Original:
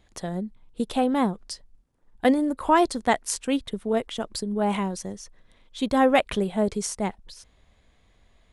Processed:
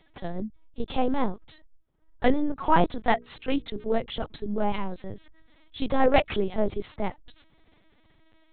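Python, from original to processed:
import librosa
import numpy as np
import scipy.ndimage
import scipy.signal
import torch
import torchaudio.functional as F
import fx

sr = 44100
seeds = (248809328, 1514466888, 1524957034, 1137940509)

y = fx.lpc_vocoder(x, sr, seeds[0], excitation='pitch_kept', order=8)
y = fx.hum_notches(y, sr, base_hz=60, count=8, at=(3.07, 4.06))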